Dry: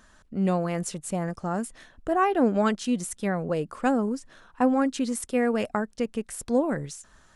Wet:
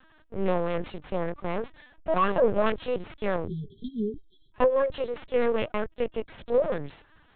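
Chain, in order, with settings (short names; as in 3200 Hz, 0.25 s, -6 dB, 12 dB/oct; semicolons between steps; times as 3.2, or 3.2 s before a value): minimum comb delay 1.8 ms; spectral delete 3.46–4.53, 450–3100 Hz; LPC vocoder at 8 kHz pitch kept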